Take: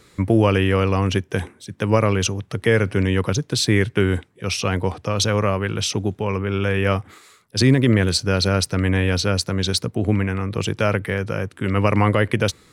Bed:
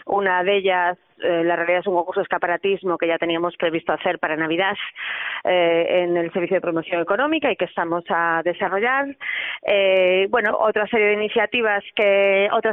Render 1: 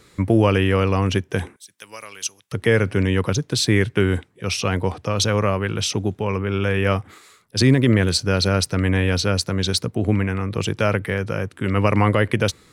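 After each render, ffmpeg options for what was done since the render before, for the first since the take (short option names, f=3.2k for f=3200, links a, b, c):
-filter_complex "[0:a]asettb=1/sr,asplit=3[a][b][c];[a]atrim=end=1.564[d];[b]atrim=start=1.56:end=2.52,asetpts=PTS-STARTPTS,afade=t=in:d=0.004:c=qsin,afade=t=out:st=0.956:d=0.004:c=qsin,aderivative[e];[c]atrim=start=2.516[f];[d][e]acrossfade=d=0.004:c1=hsin:c2=qsin[g];[g][f]acrossfade=d=0.004:c1=qsin:c2=hsin"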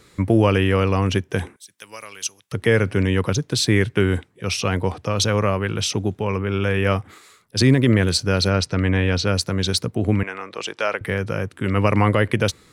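-filter_complex "[0:a]asettb=1/sr,asplit=3[a][b][c];[a]atrim=end=8.504[d];[b]atrim=start=8.5:end=9.27,asetpts=PTS-STARTPTS,afade=t=in:d=0.004:c=qsin,afade=t=out:st=0.766:d=0.004:c=qsin,lowpass=6.1k[e];[c]atrim=start=9.266[f];[d][e]acrossfade=d=0.004:c1=hsin:c2=qsin[g];[g][f]acrossfade=d=0.004:c1=qsin:c2=hsin,asettb=1/sr,asplit=3[h][i][j];[h]atrim=end=10.234[k];[i]atrim=start=10.23:end=11.01,asetpts=PTS-STARTPTS,afade=t=in:d=0.004:c=qsin,afade=t=out:st=0.776:d=0.004:c=qsin,highpass=540,lowpass=7.5k[l];[j]atrim=start=11.006[m];[k][l]acrossfade=d=0.004:c1=hsin:c2=qsin[n];[n][m]acrossfade=d=0.004:c1=qsin:c2=hsin"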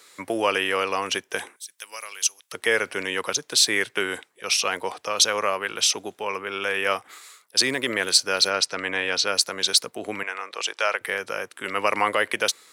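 -af "highpass=610,highshelf=f=4.3k:g=7"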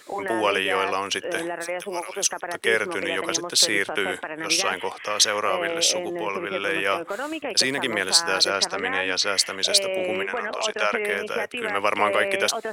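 -filter_complex "[1:a]volume=-10.5dB[a];[0:a][a]amix=inputs=2:normalize=0"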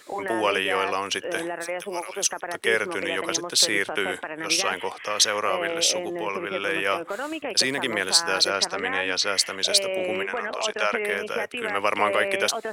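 -af "volume=-1dB"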